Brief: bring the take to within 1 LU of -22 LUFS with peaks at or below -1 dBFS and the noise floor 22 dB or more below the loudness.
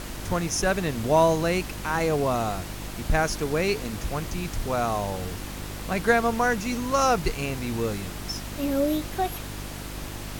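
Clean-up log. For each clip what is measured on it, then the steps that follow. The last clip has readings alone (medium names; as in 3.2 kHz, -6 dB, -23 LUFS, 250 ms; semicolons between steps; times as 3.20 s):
hum 50 Hz; highest harmonic 350 Hz; hum level -35 dBFS; noise floor -36 dBFS; noise floor target -49 dBFS; loudness -26.5 LUFS; peak level -7.0 dBFS; loudness target -22.0 LUFS
-> de-hum 50 Hz, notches 7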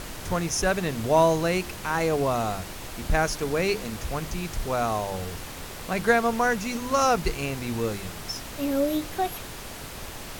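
hum not found; noise floor -38 dBFS; noise floor target -49 dBFS
-> noise print and reduce 11 dB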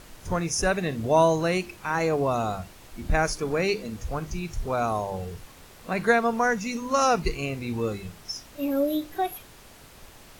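noise floor -49 dBFS; loudness -26.5 LUFS; peak level -7.5 dBFS; loudness target -22.0 LUFS
-> trim +4.5 dB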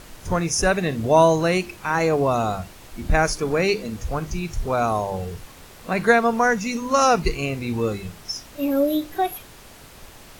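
loudness -22.0 LUFS; peak level -3.0 dBFS; noise floor -45 dBFS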